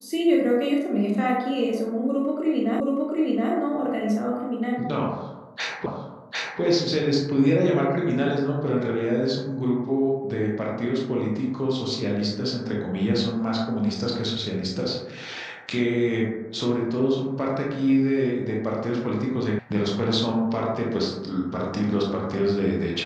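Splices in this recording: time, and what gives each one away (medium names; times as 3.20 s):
2.80 s: repeat of the last 0.72 s
5.86 s: repeat of the last 0.75 s
19.59 s: sound stops dead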